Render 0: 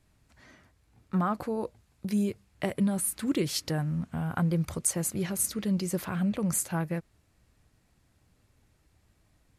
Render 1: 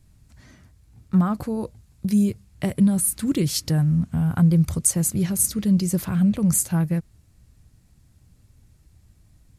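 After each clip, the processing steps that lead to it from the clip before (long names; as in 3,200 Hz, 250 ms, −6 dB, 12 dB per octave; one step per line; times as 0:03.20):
bass and treble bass +13 dB, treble +8 dB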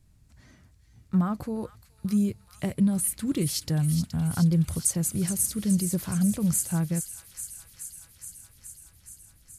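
delay with a high-pass on its return 422 ms, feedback 76%, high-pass 2,300 Hz, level −8.5 dB
level −5 dB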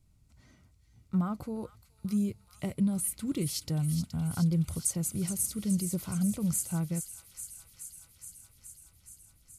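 Butterworth band-reject 1,700 Hz, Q 6
level −5 dB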